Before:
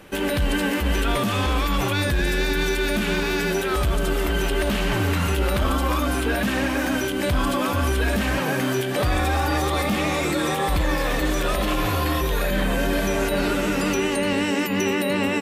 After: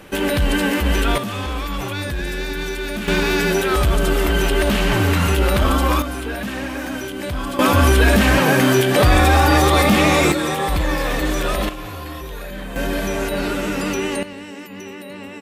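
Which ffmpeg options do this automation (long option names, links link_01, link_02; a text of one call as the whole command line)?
ffmpeg -i in.wav -af "asetnsamples=nb_out_samples=441:pad=0,asendcmd='1.18 volume volume -3dB;3.08 volume volume 5dB;6.02 volume volume -3.5dB;7.59 volume volume 8.5dB;10.32 volume volume 2dB;11.69 volume volume -8.5dB;12.76 volume volume 0dB;14.23 volume volume -12dB',volume=4dB" out.wav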